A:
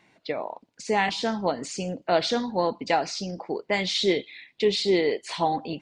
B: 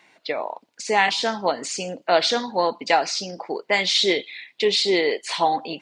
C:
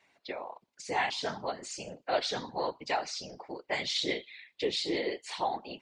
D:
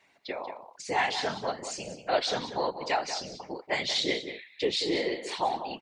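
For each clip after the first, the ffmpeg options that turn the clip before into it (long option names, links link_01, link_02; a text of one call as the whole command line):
ffmpeg -i in.wav -af "highpass=frequency=660:poles=1,volume=7dB" out.wav
ffmpeg -i in.wav -af "afftfilt=real='hypot(re,im)*cos(2*PI*random(0))':imag='hypot(re,im)*sin(2*PI*random(1))':win_size=512:overlap=0.75,volume=-6dB" out.wav
ffmpeg -i in.wav -filter_complex "[0:a]asplit=2[link_01][link_02];[link_02]adelay=186.6,volume=-10dB,highshelf=frequency=4000:gain=-4.2[link_03];[link_01][link_03]amix=inputs=2:normalize=0,volume=3dB" out.wav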